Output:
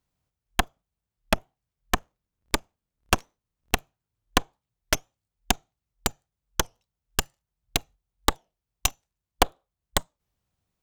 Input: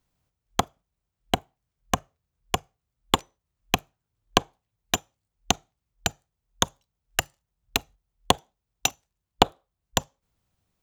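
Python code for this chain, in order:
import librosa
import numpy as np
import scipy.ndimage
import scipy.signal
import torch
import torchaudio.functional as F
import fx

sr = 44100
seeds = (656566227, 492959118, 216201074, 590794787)

y = fx.cycle_switch(x, sr, every=2, mode='inverted', at=(1.95, 3.75), fade=0.02)
y = fx.cheby_harmonics(y, sr, harmonics=(8,), levels_db=(-9,), full_scale_db=-1.5)
y = fx.record_warp(y, sr, rpm=33.33, depth_cents=250.0)
y = y * 10.0 ** (-4.0 / 20.0)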